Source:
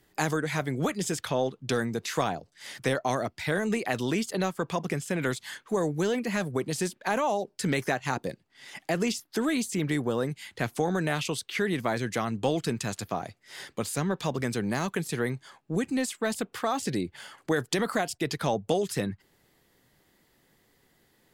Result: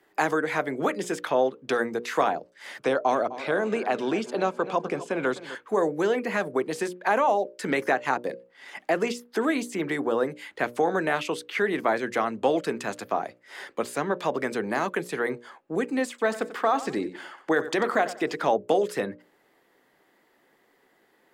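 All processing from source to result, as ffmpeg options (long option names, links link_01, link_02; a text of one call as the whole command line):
ffmpeg -i in.wav -filter_complex "[0:a]asettb=1/sr,asplit=3[link_01][link_02][link_03];[link_01]atrim=end=2.804[link_04];[link_02]atrim=start=2.8:end=5.55,asetpts=PTS-STARTPTS,afade=type=in:duration=0.004:curve=qsin,afade=type=out:start_time=2.746:duration=0.004:curve=qsin,lowpass=7700,equalizer=frequency=1900:width=5:gain=-10,asplit=2[link_05][link_06];[link_06]adelay=255,lowpass=frequency=4600:poles=1,volume=-15dB,asplit=2[link_07][link_08];[link_08]adelay=255,lowpass=frequency=4600:poles=1,volume=0.5,asplit=2[link_09][link_10];[link_10]adelay=255,lowpass=frequency=4600:poles=1,volume=0.5,asplit=2[link_11][link_12];[link_12]adelay=255,lowpass=frequency=4600:poles=1,volume=0.5,asplit=2[link_13][link_14];[link_14]adelay=255,lowpass=frequency=4600:poles=1,volume=0.5[link_15];[link_05][link_07][link_09][link_11][link_13][link_15]amix=inputs=6:normalize=0,atrim=end_sample=121275[link_16];[link_03]atrim=start=5.546[link_17];[link_04][link_16]acrossfade=duration=0.004:curve1=hsin:curve2=qsin[link_18];[link_18][link_17]acrossfade=duration=0.004:curve1=qsin:curve2=hsin,asettb=1/sr,asplit=3[link_19][link_20][link_21];[link_19]atrim=end=16.094[link_22];[link_20]atrim=start=16.09:end=18.48,asetpts=PTS-STARTPTS,afade=type=in:duration=0.004:curve=qsin,afade=type=out:start_time=2.386:duration=0.004:curve=qsin,equalizer=frequency=11000:width_type=o:width=0.32:gain=-8.5,aecho=1:1:92|184|276:0.188|0.0565|0.017,atrim=end_sample=105399[link_23];[link_21]atrim=start=18.476[link_24];[link_22][link_23]acrossfade=duration=0.004:curve1=hsin:curve2=qsin[link_25];[link_25][link_24]acrossfade=duration=0.004:curve1=qsin:curve2=hsin,acrossover=split=260 2400:gain=0.0794 1 0.251[link_26][link_27][link_28];[link_26][link_27][link_28]amix=inputs=3:normalize=0,bandreject=frequency=60:width_type=h:width=6,bandreject=frequency=120:width_type=h:width=6,bandreject=frequency=180:width_type=h:width=6,bandreject=frequency=240:width_type=h:width=6,bandreject=frequency=300:width_type=h:width=6,bandreject=frequency=360:width_type=h:width=6,bandreject=frequency=420:width_type=h:width=6,bandreject=frequency=480:width_type=h:width=6,bandreject=frequency=540:width_type=h:width=6,bandreject=frequency=600:width_type=h:width=6,volume=6dB" out.wav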